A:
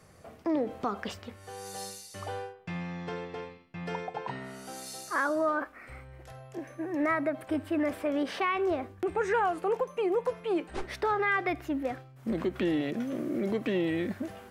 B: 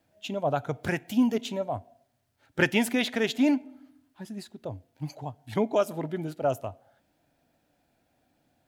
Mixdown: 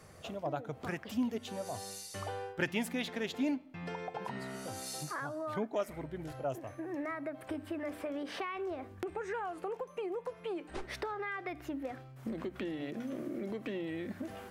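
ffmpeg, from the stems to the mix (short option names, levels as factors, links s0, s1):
-filter_complex "[0:a]bandreject=f=60:t=h:w=6,bandreject=f=120:t=h:w=6,bandreject=f=180:t=h:w=6,bandreject=f=240:t=h:w=6,bandreject=f=300:t=h:w=6,acompressor=threshold=0.0126:ratio=6,volume=1.19[s0];[1:a]volume=0.316,asplit=2[s1][s2];[s2]apad=whole_len=639617[s3];[s0][s3]sidechaincompress=threshold=0.01:ratio=4:attack=7:release=528[s4];[s4][s1]amix=inputs=2:normalize=0"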